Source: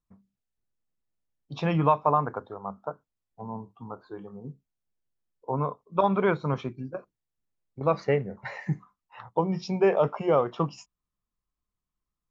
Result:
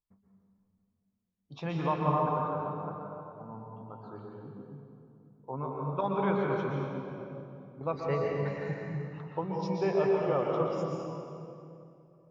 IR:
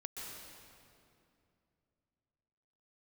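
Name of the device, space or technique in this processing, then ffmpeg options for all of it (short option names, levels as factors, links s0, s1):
stairwell: -filter_complex "[1:a]atrim=start_sample=2205[s0];[0:a][s0]afir=irnorm=-1:irlink=0,volume=0.668"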